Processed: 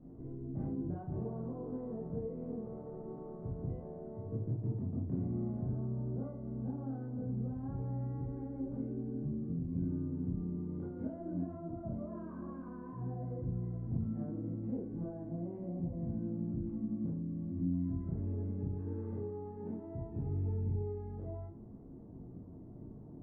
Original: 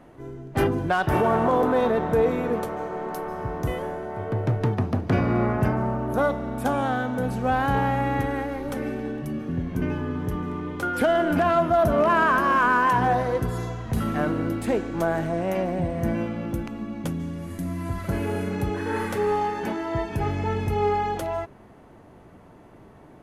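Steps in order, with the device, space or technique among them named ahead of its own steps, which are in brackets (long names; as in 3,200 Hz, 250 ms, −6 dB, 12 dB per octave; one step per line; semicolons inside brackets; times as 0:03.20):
television next door (downward compressor 4 to 1, threshold −36 dBFS, peak gain reduction 16 dB; low-pass filter 250 Hz 12 dB per octave; convolution reverb RT60 0.45 s, pre-delay 16 ms, DRR −6.5 dB)
level −3.5 dB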